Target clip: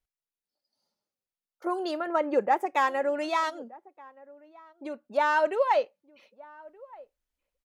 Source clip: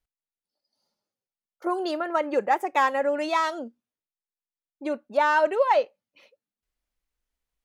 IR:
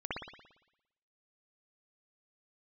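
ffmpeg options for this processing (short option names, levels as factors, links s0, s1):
-filter_complex "[0:a]asettb=1/sr,asplit=3[s0][s1][s2];[s0]atrim=end=2.074[s3];[s1]atrim=start=2.07:end=2.66,asetpts=PTS-STARTPTS,afade=t=in:d=0.004:c=qsin,afade=t=out:st=0.586:d=0.004:c=qsin,tiltshelf=f=1400:g=3.5[s4];[s2]atrim=start=2.656[s5];[s3][s4]acrossfade=d=0.004:c1=hsin:c2=qsin[s6];[s6][s5]acrossfade=d=0.004:c1=qsin:c2=hsin,asplit=3[s7][s8][s9];[s7]afade=t=out:st=3.49:d=0.02[s10];[s8]acompressor=threshold=0.01:ratio=1.5,afade=t=in:st=3.49:d=0.02,afade=t=out:st=5.03:d=0.02[s11];[s9]afade=t=in:st=5.03:d=0.02[s12];[s10][s11][s12]amix=inputs=3:normalize=0,asplit=2[s13][s14];[s14]adelay=1224,volume=0.0794,highshelf=f=4000:g=-27.6[s15];[s13][s15]amix=inputs=2:normalize=0,volume=0.708"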